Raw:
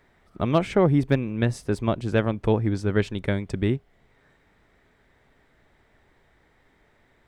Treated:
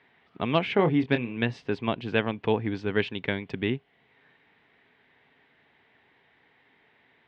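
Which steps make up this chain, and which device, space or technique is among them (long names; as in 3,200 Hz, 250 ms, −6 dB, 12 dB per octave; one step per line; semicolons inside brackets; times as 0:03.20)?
kitchen radio (loudspeaker in its box 190–3,400 Hz, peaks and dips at 200 Hz −4 dB, 340 Hz −6 dB, 580 Hz −8 dB, 1,300 Hz −6 dB, 2,800 Hz +4 dB)
high-shelf EQ 3,700 Hz +9 dB
0:00.76–0:01.37: double-tracking delay 25 ms −8.5 dB
level +1 dB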